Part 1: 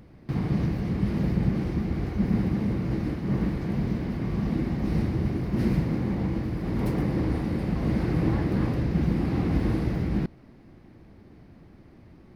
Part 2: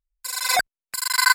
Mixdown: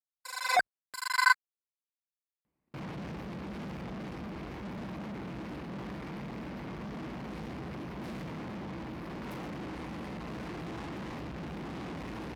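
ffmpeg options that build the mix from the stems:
-filter_complex "[0:a]equalizer=f=100:t=o:w=0.67:g=-11,equalizer=f=1k:t=o:w=0.67:g=8,equalizer=f=2.5k:t=o:w=0.67:g=5,aeval=exprs='(tanh(79.4*val(0)+0.5)-tanh(0.5))/79.4':c=same,adelay=2450,volume=-0.5dB[a];[1:a]lowpass=f=1.4k:p=1,lowshelf=f=210:g=-10,volume=-1.5dB[b];[a][b]amix=inputs=2:normalize=0,agate=range=-29dB:threshold=-49dB:ratio=16:detection=peak,highpass=63"

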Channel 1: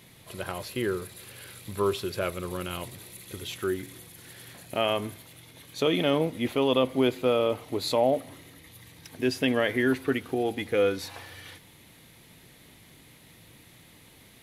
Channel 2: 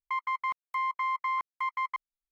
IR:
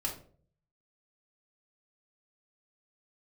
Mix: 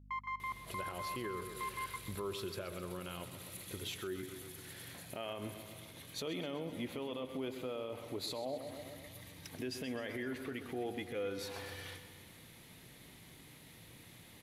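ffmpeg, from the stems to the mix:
-filter_complex "[0:a]alimiter=limit=-22dB:level=0:latency=1:release=74,adelay=400,volume=-3.5dB,asplit=2[a][b];[b]volume=-11.5dB[c];[1:a]aeval=exprs='val(0)+0.00447*(sin(2*PI*50*n/s)+sin(2*PI*2*50*n/s)/2+sin(2*PI*3*50*n/s)/3+sin(2*PI*4*50*n/s)/4+sin(2*PI*5*50*n/s)/5)':c=same,volume=-9dB,asplit=2[d][e];[e]volume=-12.5dB[f];[c][f]amix=inputs=2:normalize=0,aecho=0:1:129|258|387|516|645|774|903|1032|1161:1|0.58|0.336|0.195|0.113|0.0656|0.0381|0.0221|0.0128[g];[a][d][g]amix=inputs=3:normalize=0,alimiter=level_in=7dB:limit=-24dB:level=0:latency=1:release=328,volume=-7dB"

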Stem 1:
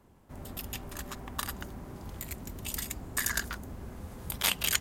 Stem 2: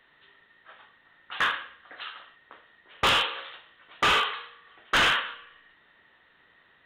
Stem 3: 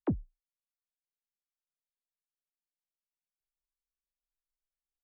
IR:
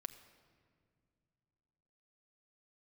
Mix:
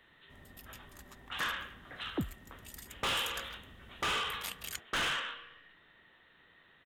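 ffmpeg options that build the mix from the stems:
-filter_complex "[0:a]volume=-14dB,asplit=2[a][b];[b]volume=-23dB[c];[1:a]acompressor=threshold=-25dB:ratio=6,equalizer=f=1.1k:t=o:w=2.9:g=-5,asoftclip=type=tanh:threshold=-30.5dB,volume=-1.5dB,asplit=2[d][e];[e]volume=-4.5dB[f];[2:a]adelay=2100,volume=-4.5dB[g];[3:a]atrim=start_sample=2205[h];[c][f]amix=inputs=2:normalize=0[i];[i][h]afir=irnorm=-1:irlink=0[j];[a][d][g][j]amix=inputs=4:normalize=0"

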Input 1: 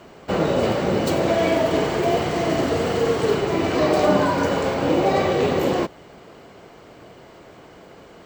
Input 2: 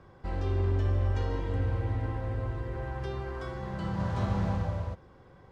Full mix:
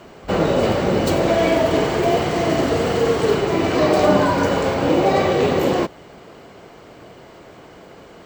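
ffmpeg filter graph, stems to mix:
-filter_complex "[0:a]volume=2.5dB[a];[1:a]volume=-7dB[b];[a][b]amix=inputs=2:normalize=0"

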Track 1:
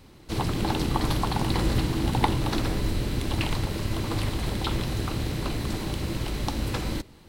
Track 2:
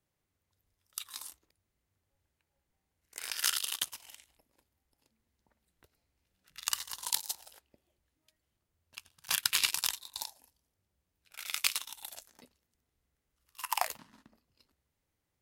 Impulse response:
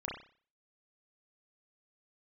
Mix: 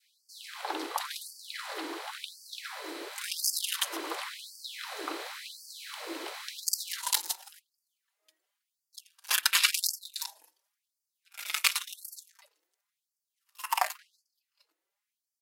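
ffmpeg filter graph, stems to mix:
-filter_complex "[0:a]bandreject=f=2.8k:w=22,volume=-7.5dB[a];[1:a]asplit=2[b][c];[c]adelay=4.4,afreqshift=2.8[d];[b][d]amix=inputs=2:normalize=1,volume=2.5dB,asplit=2[e][f];[f]volume=-22dB[g];[2:a]atrim=start_sample=2205[h];[g][h]afir=irnorm=-1:irlink=0[i];[a][e][i]amix=inputs=3:normalize=0,adynamicequalizer=threshold=0.00398:dfrequency=1400:dqfactor=0.8:tfrequency=1400:tqfactor=0.8:attack=5:release=100:ratio=0.375:range=3:mode=boostabove:tftype=bell,dynaudnorm=f=850:g=9:m=4dB,afftfilt=real='re*gte(b*sr/1024,270*pow(4500/270,0.5+0.5*sin(2*PI*0.93*pts/sr)))':imag='im*gte(b*sr/1024,270*pow(4500/270,0.5+0.5*sin(2*PI*0.93*pts/sr)))':win_size=1024:overlap=0.75"

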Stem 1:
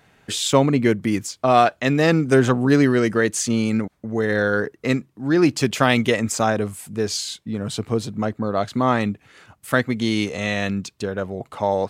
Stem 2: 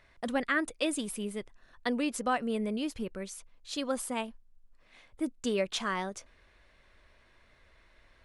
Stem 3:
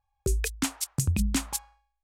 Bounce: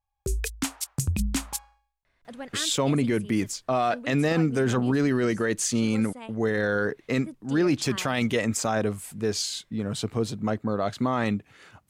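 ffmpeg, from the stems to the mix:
-filter_complex "[0:a]adelay=2250,volume=-3dB[a];[1:a]adelay=2050,volume=-8dB[b];[2:a]dynaudnorm=f=170:g=3:m=5.5dB,volume=-6dB[c];[a][b][c]amix=inputs=3:normalize=0,alimiter=limit=-15dB:level=0:latency=1:release=12"

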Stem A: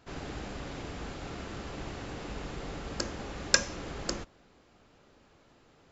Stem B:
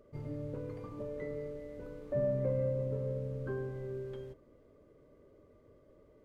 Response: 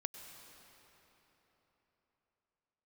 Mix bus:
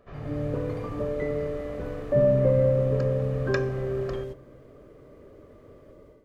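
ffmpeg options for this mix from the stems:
-filter_complex "[0:a]lowpass=1.9k,aecho=1:1:1.7:0.58,volume=-2.5dB[a];[1:a]dynaudnorm=f=190:g=3:m=11dB,volume=-0.5dB,asplit=2[b][c];[c]volume=-16.5dB[d];[2:a]atrim=start_sample=2205[e];[d][e]afir=irnorm=-1:irlink=0[f];[a][b][f]amix=inputs=3:normalize=0"

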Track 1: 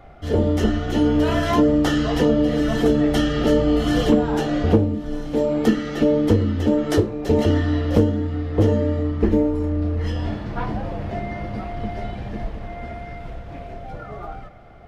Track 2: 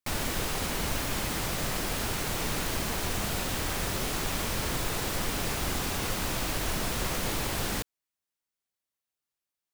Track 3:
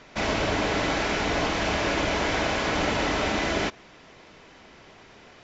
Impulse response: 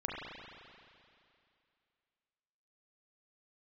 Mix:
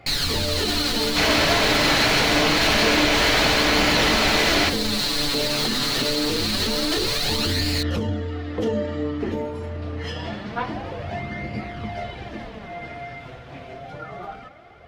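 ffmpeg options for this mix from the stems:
-filter_complex "[0:a]highpass=82,bandreject=f=50:t=h:w=6,bandreject=f=100:t=h:w=6,bandreject=f=150:t=h:w=6,bandreject=f=200:t=h:w=6,bandreject=f=250:t=h:w=6,bandreject=f=300:t=h:w=6,alimiter=limit=-15dB:level=0:latency=1:release=14,volume=2dB[a];[1:a]equalizer=f=4.2k:t=o:w=0.36:g=15,aecho=1:1:7:0.81,volume=2dB[b];[2:a]adelay=1000,volume=2dB[c];[a][b]amix=inputs=2:normalize=0,flanger=delay=0.4:depth=7.6:regen=32:speed=0.26:shape=sinusoidal,alimiter=limit=-16dB:level=0:latency=1:release=45,volume=0dB[d];[c][d]amix=inputs=2:normalize=0,equalizer=f=3.3k:w=0.48:g=7"

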